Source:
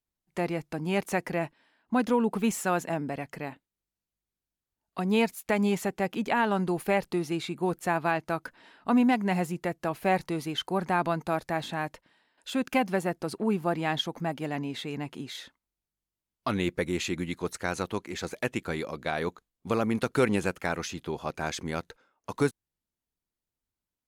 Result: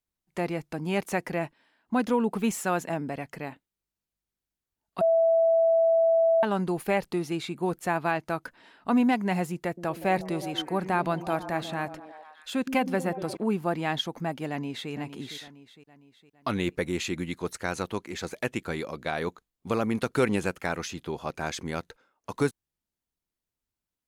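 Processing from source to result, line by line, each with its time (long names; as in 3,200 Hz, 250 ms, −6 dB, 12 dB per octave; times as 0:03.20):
0:05.01–0:06.43: beep over 659 Hz −18 dBFS
0:09.65–0:13.37: echo through a band-pass that steps 120 ms, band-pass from 240 Hz, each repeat 0.7 octaves, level −6.5 dB
0:14.49–0:14.91: delay throw 460 ms, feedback 50%, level −11.5 dB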